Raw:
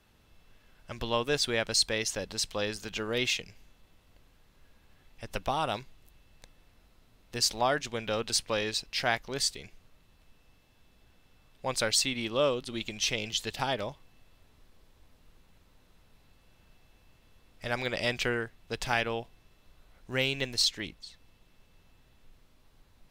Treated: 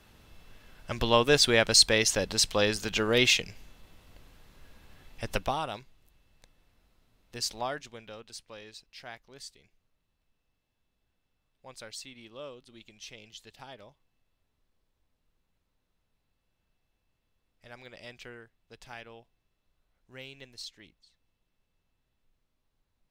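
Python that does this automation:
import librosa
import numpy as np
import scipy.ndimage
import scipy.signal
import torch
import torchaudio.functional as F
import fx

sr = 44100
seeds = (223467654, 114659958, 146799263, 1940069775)

y = fx.gain(x, sr, db=fx.line((5.3, 6.5), (5.7, -5.5), (7.6, -5.5), (8.28, -16.5)))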